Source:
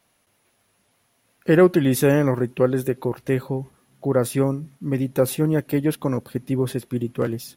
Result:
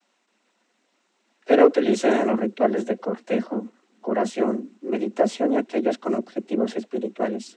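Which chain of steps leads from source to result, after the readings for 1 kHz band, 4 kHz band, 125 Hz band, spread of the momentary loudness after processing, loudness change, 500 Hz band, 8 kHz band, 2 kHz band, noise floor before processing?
+5.0 dB, -0.5 dB, under -15 dB, 12 LU, -1.5 dB, 0.0 dB, -7.5 dB, -1.5 dB, -67 dBFS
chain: vibrato 0.95 Hz 28 cents; noise vocoder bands 12; frequency shift +100 Hz; gain -1 dB

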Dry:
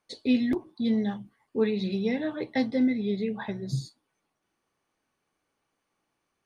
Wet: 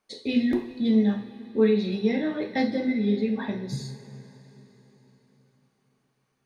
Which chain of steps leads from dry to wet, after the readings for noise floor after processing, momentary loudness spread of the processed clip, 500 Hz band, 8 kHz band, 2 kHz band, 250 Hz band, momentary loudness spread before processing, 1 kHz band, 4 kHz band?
-73 dBFS, 11 LU, +4.0 dB, n/a, +2.5 dB, +3.0 dB, 9 LU, +3.0 dB, +2.0 dB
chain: two-slope reverb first 0.48 s, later 4.2 s, from -17 dB, DRR 2 dB

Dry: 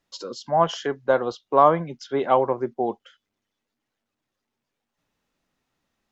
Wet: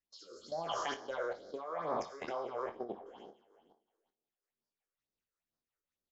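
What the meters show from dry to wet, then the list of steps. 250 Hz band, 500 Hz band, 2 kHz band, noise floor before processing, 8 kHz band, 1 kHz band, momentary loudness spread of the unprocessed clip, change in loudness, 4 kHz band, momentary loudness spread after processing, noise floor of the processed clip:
-18.5 dB, -17.0 dB, -11.5 dB, -83 dBFS, n/a, -18.0 dB, 12 LU, -17.5 dB, -11.0 dB, 16 LU, under -85 dBFS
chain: spectral trails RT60 1.56 s; low shelf 460 Hz -7 dB; harmonic-percussive split harmonic -9 dB; bell 140 Hz -3 dB 0.77 oct; level quantiser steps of 15 dB; rotary speaker horn 0.85 Hz, later 5.5 Hz, at 2.26; phaser stages 6, 2.2 Hz, lowest notch 190–2800 Hz; early reflections 25 ms -8.5 dB, 58 ms -17 dB; gain -2.5 dB

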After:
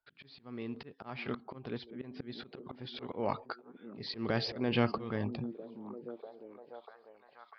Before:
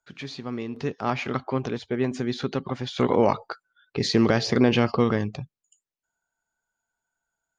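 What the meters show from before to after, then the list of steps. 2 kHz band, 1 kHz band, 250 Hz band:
-10.5 dB, -12.0 dB, -13.0 dB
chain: downsampling 11025 Hz; auto swell 0.294 s; delay with a stepping band-pass 0.646 s, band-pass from 250 Hz, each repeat 0.7 oct, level -8 dB; gain -6.5 dB

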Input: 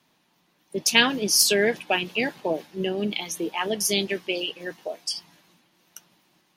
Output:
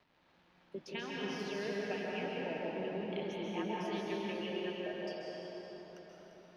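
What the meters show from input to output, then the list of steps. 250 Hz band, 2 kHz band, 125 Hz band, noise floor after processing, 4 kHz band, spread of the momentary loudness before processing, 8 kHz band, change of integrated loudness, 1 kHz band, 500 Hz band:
-10.0 dB, -17.0 dB, -8.5 dB, -69 dBFS, -21.5 dB, 13 LU, -33.5 dB, -16.0 dB, -11.5 dB, -11.0 dB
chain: compressor 3:1, threshold -33 dBFS, peak gain reduction 15.5 dB; crackle 580/s -45 dBFS; air absorption 280 m; echo with dull and thin repeats by turns 0.173 s, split 920 Hz, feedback 52%, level -6.5 dB; plate-style reverb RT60 4.6 s, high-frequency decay 0.6×, pre-delay 0.12 s, DRR -4.5 dB; gain -8.5 dB

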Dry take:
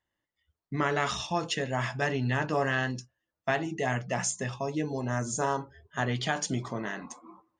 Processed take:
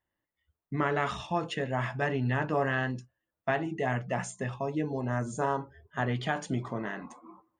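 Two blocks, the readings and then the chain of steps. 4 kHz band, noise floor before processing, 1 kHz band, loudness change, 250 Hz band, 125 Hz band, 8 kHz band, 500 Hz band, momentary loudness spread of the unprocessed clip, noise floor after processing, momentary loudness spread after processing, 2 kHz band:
-6.5 dB, under -85 dBFS, -0.5 dB, -1.0 dB, 0.0 dB, 0.0 dB, -11.5 dB, 0.0 dB, 9 LU, under -85 dBFS, 8 LU, -2.0 dB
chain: bell 5700 Hz -14 dB 1.3 oct

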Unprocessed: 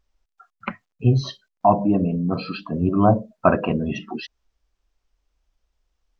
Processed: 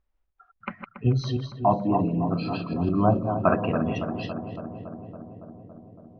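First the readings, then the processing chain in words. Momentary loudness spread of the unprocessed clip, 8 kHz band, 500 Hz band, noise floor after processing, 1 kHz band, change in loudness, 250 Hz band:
16 LU, n/a, -3.5 dB, -73 dBFS, -3.5 dB, -4.5 dB, -3.5 dB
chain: reverse delay 0.152 s, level -6.5 dB; darkening echo 0.28 s, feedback 77%, low-pass 1700 Hz, level -9.5 dB; low-pass opened by the level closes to 2400 Hz, open at -12.5 dBFS; gain -5 dB

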